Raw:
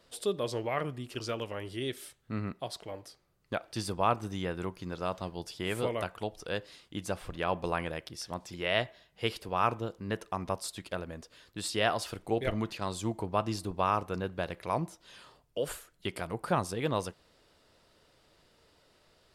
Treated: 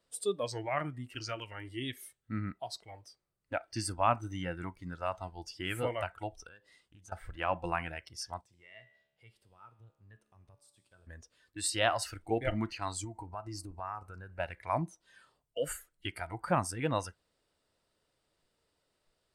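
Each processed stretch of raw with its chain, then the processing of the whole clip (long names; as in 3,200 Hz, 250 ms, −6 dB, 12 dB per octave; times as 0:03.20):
0:06.47–0:07.12: notch filter 2,300 Hz, Q 15 + downward compressor, threshold −45 dBFS + highs frequency-modulated by the lows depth 0.16 ms
0:08.41–0:11.07: parametric band 120 Hz +11.5 dB 0.51 octaves + downward compressor 2 to 1, threshold −46 dBFS + tuned comb filter 72 Hz, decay 1.3 s, mix 70%
0:13.04–0:14.40: parametric band 3,400 Hz −13.5 dB 0.26 octaves + downward compressor 3 to 1, threshold −36 dBFS
whole clip: noise reduction from a noise print of the clip's start 14 dB; parametric band 8,500 Hz +9 dB 0.25 octaves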